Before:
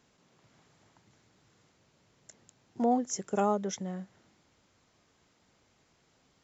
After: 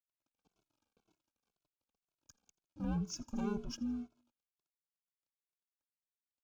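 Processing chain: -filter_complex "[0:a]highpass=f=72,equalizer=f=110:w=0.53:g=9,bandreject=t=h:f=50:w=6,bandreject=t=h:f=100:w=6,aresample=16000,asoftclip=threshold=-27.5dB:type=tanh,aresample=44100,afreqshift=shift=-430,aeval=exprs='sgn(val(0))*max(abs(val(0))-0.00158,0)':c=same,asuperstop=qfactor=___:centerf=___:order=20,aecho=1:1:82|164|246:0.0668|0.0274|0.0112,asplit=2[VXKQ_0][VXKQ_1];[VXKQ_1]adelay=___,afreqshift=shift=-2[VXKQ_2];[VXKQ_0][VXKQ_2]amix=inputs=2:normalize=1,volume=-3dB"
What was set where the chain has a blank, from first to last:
3.8, 1900, 2.2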